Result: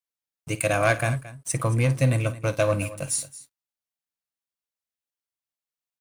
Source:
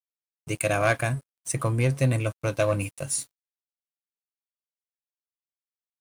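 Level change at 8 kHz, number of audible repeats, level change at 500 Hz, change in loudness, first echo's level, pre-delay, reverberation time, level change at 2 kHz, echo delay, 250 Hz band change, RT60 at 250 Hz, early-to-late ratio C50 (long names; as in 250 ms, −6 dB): +1.5 dB, 2, +1.5 dB, +1.5 dB, −16.0 dB, no reverb audible, no reverb audible, +1.5 dB, 53 ms, +1.0 dB, no reverb audible, no reverb audible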